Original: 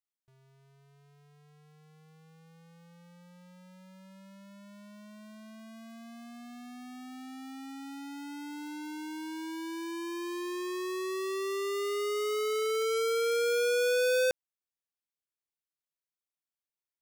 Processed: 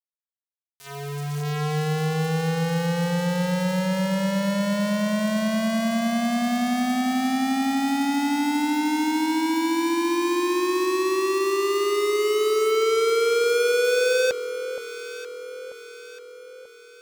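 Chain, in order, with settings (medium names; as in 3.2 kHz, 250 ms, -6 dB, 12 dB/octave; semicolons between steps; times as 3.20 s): recorder AGC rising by 15 dB/s; low-pass 8.8 kHz 12 dB/octave; bass shelf 69 Hz -8 dB; waveshaping leveller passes 1; in parallel at -1 dB: compression 16:1, threshold -37 dBFS, peak gain reduction 12 dB; on the sum: word length cut 6-bit, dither none; on a send: echo whose repeats swap between lows and highs 469 ms, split 1.1 kHz, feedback 69%, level -9.5 dB; on the sum: trim +3.5 dB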